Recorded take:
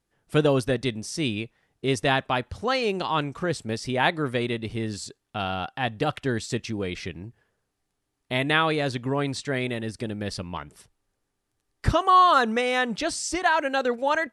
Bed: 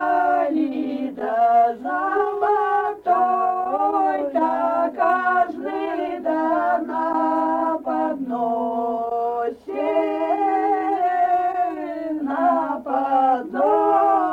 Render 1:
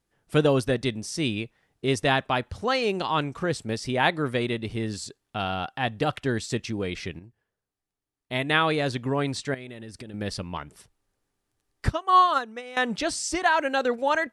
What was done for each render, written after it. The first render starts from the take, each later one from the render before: 7.19–8.61 s: upward expansion, over -41 dBFS; 9.54–10.14 s: compression 8:1, threshold -36 dBFS; 11.88–12.77 s: upward expansion 2.5:1, over -25 dBFS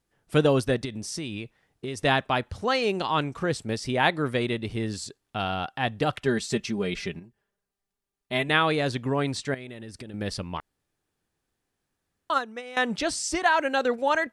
0.85–2.00 s: compression, threshold -29 dBFS; 6.23–8.49 s: comb 5 ms; 10.60–12.30 s: room tone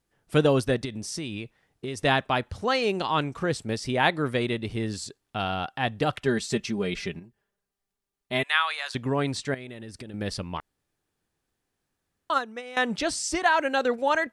8.43–8.95 s: high-pass 970 Hz 24 dB/octave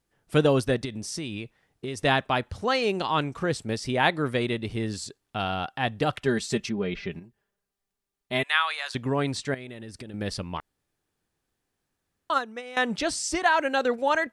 6.69–7.12 s: distance through air 220 m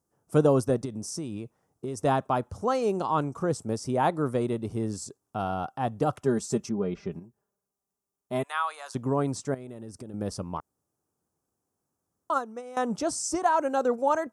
high-pass 84 Hz; high-order bell 2.7 kHz -15.5 dB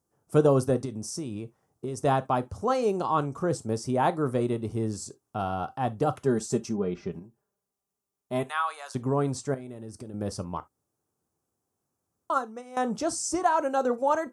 gated-style reverb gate 90 ms falling, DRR 11.5 dB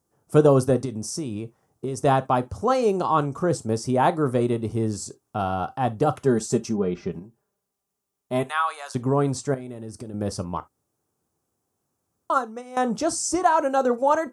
trim +4.5 dB

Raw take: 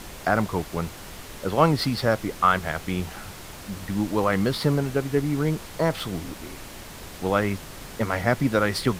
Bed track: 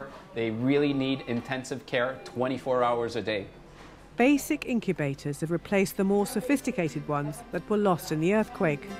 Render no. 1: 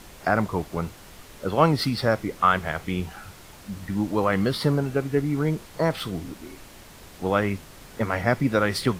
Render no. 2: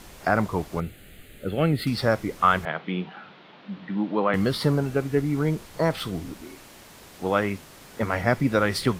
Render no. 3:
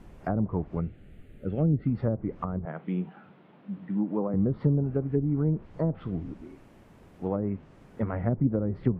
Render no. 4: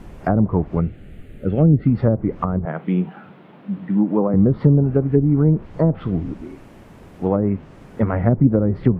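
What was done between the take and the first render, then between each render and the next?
noise print and reduce 6 dB
0.80–1.87 s: static phaser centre 2.4 kHz, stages 4; 2.65–4.34 s: elliptic band-pass 170–3600 Hz; 6.43–8.03 s: bass shelf 83 Hz -11.5 dB
low-pass that closes with the level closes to 480 Hz, closed at -17.5 dBFS; FFT filter 180 Hz 0 dB, 2.7 kHz -15 dB, 4.1 kHz -23 dB
trim +10.5 dB; peak limiter -3 dBFS, peak gain reduction 2 dB

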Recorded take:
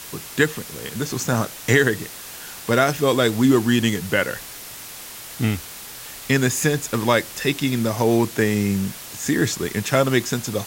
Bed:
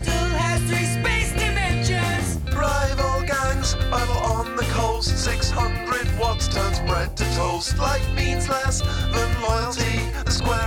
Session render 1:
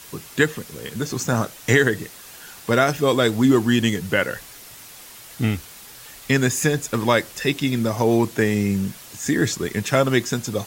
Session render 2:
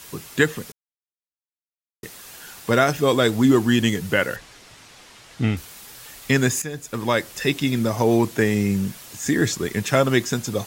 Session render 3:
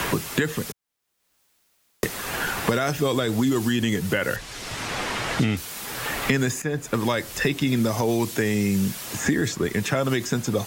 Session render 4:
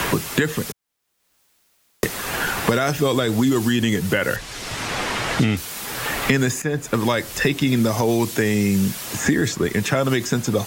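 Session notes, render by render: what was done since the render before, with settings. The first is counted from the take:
noise reduction 6 dB, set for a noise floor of -37 dBFS
0.72–2.03 s: mute; 4.36–5.57 s: distance through air 76 m; 6.62–7.40 s: fade in, from -14.5 dB
peak limiter -12.5 dBFS, peak gain reduction 9 dB; three bands compressed up and down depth 100%
trim +3.5 dB

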